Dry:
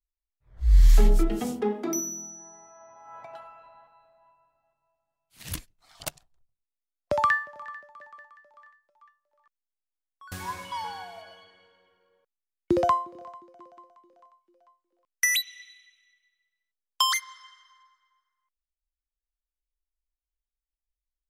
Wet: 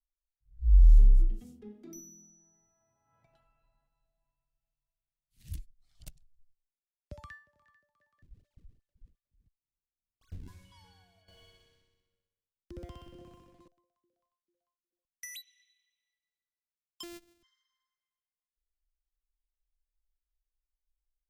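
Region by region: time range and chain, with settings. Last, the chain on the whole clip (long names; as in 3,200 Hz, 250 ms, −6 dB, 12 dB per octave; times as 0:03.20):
0:08.22–0:10.48: sample-and-hold swept by an LFO 41×, swing 160% 2.8 Hz + high-shelf EQ 9,700 Hz −9 dB
0:11.28–0:13.68: downward compressor 10 to 1, threshold −32 dBFS + leveller curve on the samples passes 3 + flutter between parallel walls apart 10.7 metres, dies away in 1.1 s
0:17.03–0:17.43: samples sorted by size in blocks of 128 samples + low-shelf EQ 96 Hz −10 dB
whole clip: low-shelf EQ 84 Hz +9 dB; automatic gain control gain up to 7 dB; guitar amp tone stack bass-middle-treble 10-0-1; level −4.5 dB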